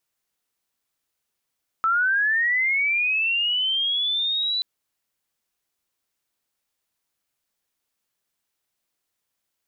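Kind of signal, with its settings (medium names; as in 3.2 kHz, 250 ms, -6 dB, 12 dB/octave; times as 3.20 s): sweep linear 1.3 kHz -> 4 kHz -17.5 dBFS -> -21.5 dBFS 2.78 s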